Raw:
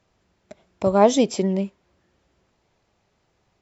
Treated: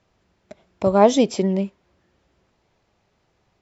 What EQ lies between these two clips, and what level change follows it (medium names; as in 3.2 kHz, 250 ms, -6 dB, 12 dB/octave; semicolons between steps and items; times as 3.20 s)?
distance through air 67 m; treble shelf 5.9 kHz +4 dB; +1.5 dB